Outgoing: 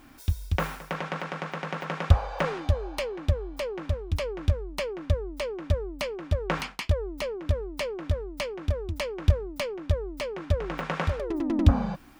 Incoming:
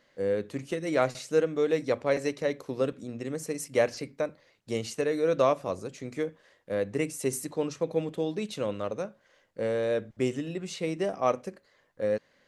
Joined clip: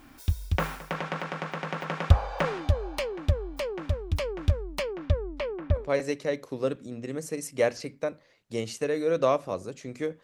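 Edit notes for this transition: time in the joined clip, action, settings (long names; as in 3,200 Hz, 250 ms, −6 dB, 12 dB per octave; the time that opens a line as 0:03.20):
outgoing
0:04.82–0:05.90: low-pass filter 6,500 Hz → 1,700 Hz
0:05.82: continue with incoming from 0:01.99, crossfade 0.16 s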